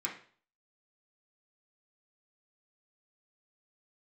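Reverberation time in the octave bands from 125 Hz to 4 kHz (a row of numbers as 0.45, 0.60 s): 0.50, 0.45, 0.45, 0.45, 0.45, 0.45 s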